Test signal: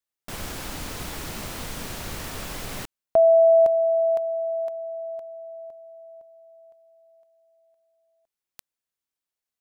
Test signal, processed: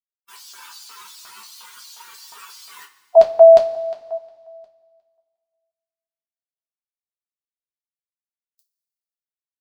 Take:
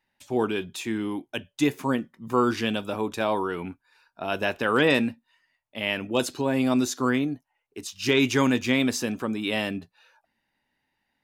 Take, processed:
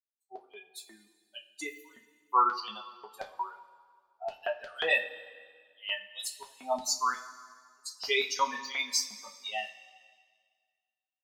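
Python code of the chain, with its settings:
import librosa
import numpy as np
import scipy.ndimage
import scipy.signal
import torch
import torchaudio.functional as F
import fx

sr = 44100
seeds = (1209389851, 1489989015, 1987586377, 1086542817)

y = fx.bin_expand(x, sr, power=3.0)
y = fx.filter_lfo_highpass(y, sr, shape='square', hz=2.8, low_hz=830.0, high_hz=4500.0, q=2.5)
y = fx.rev_double_slope(y, sr, seeds[0], early_s=0.22, late_s=1.8, knee_db=-18, drr_db=-0.5)
y = F.gain(torch.from_numpy(y), -1.0).numpy()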